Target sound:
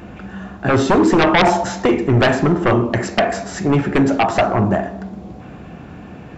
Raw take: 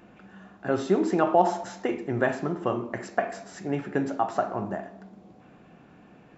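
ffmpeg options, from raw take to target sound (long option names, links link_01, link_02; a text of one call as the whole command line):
ffmpeg -i in.wav -af "equalizer=frequency=66:width_type=o:width=1.5:gain=14,aeval=exprs='0.473*sin(PI/2*4.47*val(0)/0.473)':channel_layout=same,volume=-2dB" out.wav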